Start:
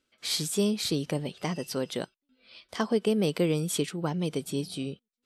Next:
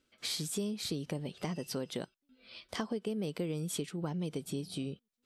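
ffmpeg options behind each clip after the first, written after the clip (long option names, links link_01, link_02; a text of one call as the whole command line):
ffmpeg -i in.wav -af "lowshelf=frequency=360:gain=4.5,acompressor=threshold=-35dB:ratio=4" out.wav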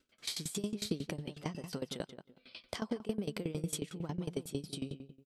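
ffmpeg -i in.wav -filter_complex "[0:a]asplit=2[link_01][link_02];[link_02]adelay=168,lowpass=frequency=2200:poles=1,volume=-10dB,asplit=2[link_03][link_04];[link_04]adelay=168,lowpass=frequency=2200:poles=1,volume=0.25,asplit=2[link_05][link_06];[link_06]adelay=168,lowpass=frequency=2200:poles=1,volume=0.25[link_07];[link_03][link_05][link_07]amix=inputs=3:normalize=0[link_08];[link_01][link_08]amix=inputs=2:normalize=0,aeval=exprs='val(0)*pow(10,-20*if(lt(mod(11*n/s,1),2*abs(11)/1000),1-mod(11*n/s,1)/(2*abs(11)/1000),(mod(11*n/s,1)-2*abs(11)/1000)/(1-2*abs(11)/1000))/20)':channel_layout=same,volume=4.5dB" out.wav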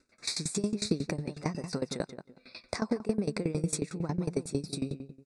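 ffmpeg -i in.wav -af "aresample=22050,aresample=44100,asuperstop=centerf=3100:order=4:qfactor=2.5,volume=6.5dB" out.wav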